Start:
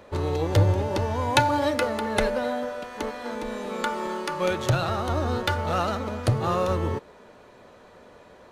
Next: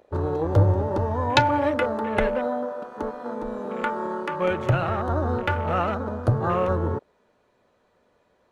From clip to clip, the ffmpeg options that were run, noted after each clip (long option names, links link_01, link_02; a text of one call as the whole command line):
ffmpeg -i in.wav -af "afwtdn=0.0224,volume=1.5dB" out.wav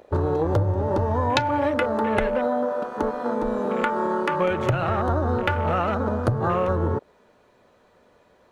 ffmpeg -i in.wav -af "acompressor=threshold=-26dB:ratio=6,volume=7dB" out.wav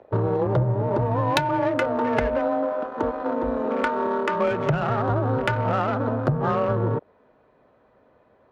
ffmpeg -i in.wav -af "afreqshift=25,adynamicsmooth=sensitivity=1.5:basefreq=2200" out.wav